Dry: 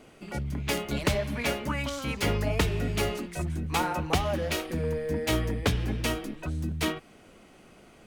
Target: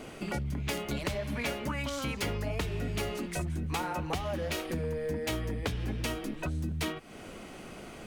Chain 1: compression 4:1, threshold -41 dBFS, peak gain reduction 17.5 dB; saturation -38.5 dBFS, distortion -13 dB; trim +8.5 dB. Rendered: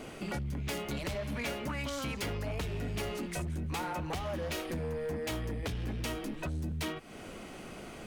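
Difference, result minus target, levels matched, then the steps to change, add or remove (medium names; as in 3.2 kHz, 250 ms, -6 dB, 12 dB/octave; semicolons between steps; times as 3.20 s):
saturation: distortion +15 dB
change: saturation -27 dBFS, distortion -28 dB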